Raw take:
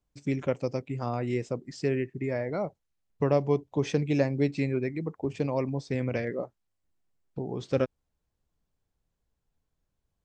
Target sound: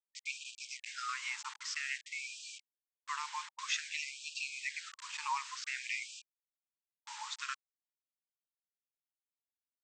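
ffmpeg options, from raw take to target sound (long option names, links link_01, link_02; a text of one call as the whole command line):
ffmpeg -i in.wav -af "alimiter=limit=-18.5dB:level=0:latency=1:release=67,aresample=16000,acrusher=bits=7:mix=0:aa=0.000001,aresample=44100,asetrate=45938,aresample=44100,afftfilt=real='re*gte(b*sr/1024,820*pow(2400/820,0.5+0.5*sin(2*PI*0.52*pts/sr)))':imag='im*gte(b*sr/1024,820*pow(2400/820,0.5+0.5*sin(2*PI*0.52*pts/sr)))':win_size=1024:overlap=0.75,volume=5dB" out.wav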